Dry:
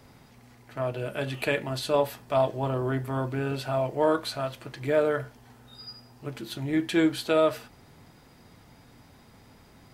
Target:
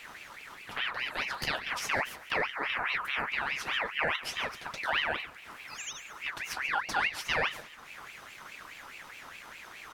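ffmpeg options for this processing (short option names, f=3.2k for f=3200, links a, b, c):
-filter_complex "[0:a]acompressor=threshold=-46dB:ratio=2,asplit=2[a][b];[b]asetrate=37084,aresample=44100,atempo=1.18921,volume=-6dB[c];[a][c]amix=inputs=2:normalize=0,asplit=2[d][e];[e]aecho=0:1:139|278|417|556:0.133|0.0587|0.0258|0.0114[f];[d][f]amix=inputs=2:normalize=0,aeval=exprs='val(0)*sin(2*PI*1800*n/s+1800*0.4/4.8*sin(2*PI*4.8*n/s))':c=same,volume=8.5dB"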